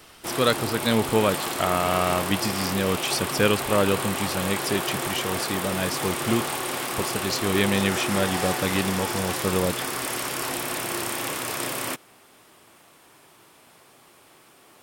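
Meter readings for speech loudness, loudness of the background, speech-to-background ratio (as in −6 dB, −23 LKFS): −26.0 LKFS, −28.0 LKFS, 2.0 dB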